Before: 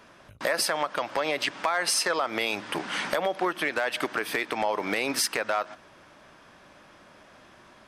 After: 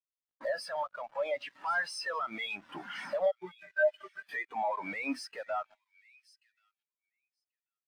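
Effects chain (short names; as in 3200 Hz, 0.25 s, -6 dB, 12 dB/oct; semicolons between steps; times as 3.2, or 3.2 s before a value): dynamic EQ 370 Hz, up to -7 dB, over -43 dBFS, Q 1.2; 3.31–4.29 metallic resonator 180 Hz, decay 0.22 s, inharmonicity 0.03; companded quantiser 2-bit; thin delay 1.086 s, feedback 32%, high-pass 2000 Hz, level -7.5 dB; pops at 2.33, -16 dBFS; spectral expander 2.5:1; gain -3.5 dB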